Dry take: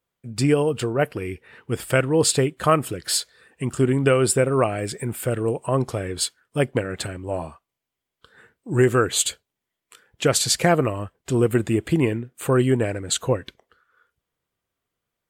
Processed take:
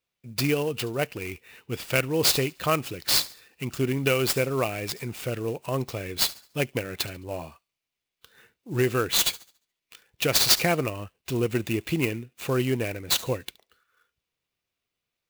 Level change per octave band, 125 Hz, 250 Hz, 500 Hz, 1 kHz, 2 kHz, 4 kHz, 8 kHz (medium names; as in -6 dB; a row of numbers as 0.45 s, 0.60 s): -6.5 dB, -6.5 dB, -6.5 dB, -6.0 dB, -1.5 dB, +2.0 dB, -4.0 dB